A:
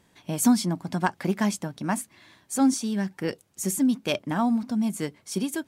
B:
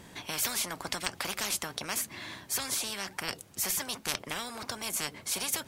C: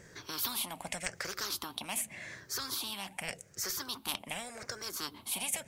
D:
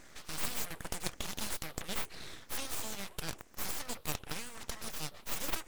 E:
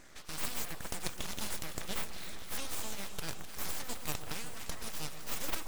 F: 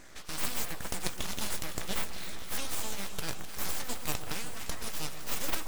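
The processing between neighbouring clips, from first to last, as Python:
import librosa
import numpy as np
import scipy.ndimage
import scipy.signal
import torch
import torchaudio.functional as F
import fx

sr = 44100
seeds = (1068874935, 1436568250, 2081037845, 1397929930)

y1 = fx.spectral_comp(x, sr, ratio=10.0)
y2 = fx.spec_ripple(y1, sr, per_octave=0.54, drift_hz=-0.86, depth_db=13)
y2 = y2 * librosa.db_to_amplitude(-6.0)
y3 = np.abs(y2)
y3 = y3 * librosa.db_to_amplitude(1.5)
y4 = fx.echo_alternate(y3, sr, ms=128, hz=1200.0, feedback_pct=89, wet_db=-10.5)
y4 = y4 * librosa.db_to_amplitude(-1.0)
y5 = fx.doubler(y4, sr, ms=16.0, db=-13.0)
y5 = y5 * librosa.db_to_amplitude(3.5)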